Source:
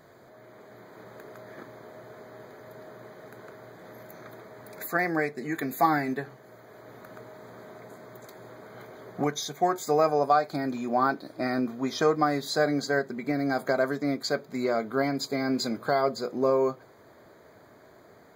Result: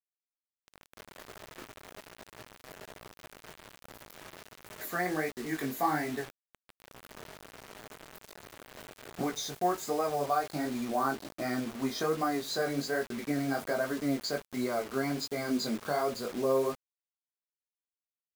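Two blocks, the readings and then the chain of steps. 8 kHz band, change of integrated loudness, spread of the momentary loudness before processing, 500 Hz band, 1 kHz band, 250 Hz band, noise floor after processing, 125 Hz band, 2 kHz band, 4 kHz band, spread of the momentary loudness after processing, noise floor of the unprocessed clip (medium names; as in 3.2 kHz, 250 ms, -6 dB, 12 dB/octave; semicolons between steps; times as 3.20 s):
-1.0 dB, -5.0 dB, 22 LU, -6.0 dB, -6.0 dB, -4.0 dB, under -85 dBFS, -4.5 dB, -5.5 dB, -2.5 dB, 20 LU, -54 dBFS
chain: band-stop 3.4 kHz, Q 30; in parallel at +2 dB: peak limiter -20.5 dBFS, peak gain reduction 11 dB; on the sum: chorus 1.3 Hz, delay 16.5 ms, depth 6.1 ms; word length cut 6-bit, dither none; trim -7.5 dB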